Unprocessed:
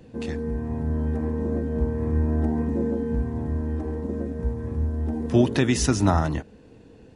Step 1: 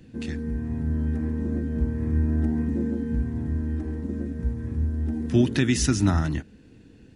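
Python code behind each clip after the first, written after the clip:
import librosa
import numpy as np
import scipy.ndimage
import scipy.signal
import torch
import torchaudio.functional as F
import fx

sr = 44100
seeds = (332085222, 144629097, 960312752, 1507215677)

y = fx.band_shelf(x, sr, hz=700.0, db=-9.5, octaves=1.7)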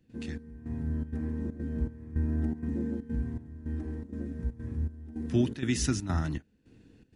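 y = fx.step_gate(x, sr, bpm=160, pattern='.xxx...xxxx.xxxx', floor_db=-12.0, edge_ms=4.5)
y = F.gain(torch.from_numpy(y), -6.0).numpy()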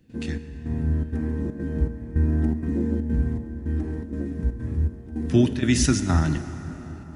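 y = fx.rev_plate(x, sr, seeds[0], rt60_s=4.6, hf_ratio=0.5, predelay_ms=0, drr_db=9.5)
y = F.gain(torch.from_numpy(y), 8.0).numpy()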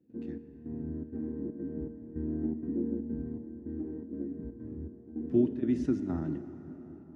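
y = fx.bandpass_q(x, sr, hz=330.0, q=1.7)
y = F.gain(torch.from_numpy(y), -4.0).numpy()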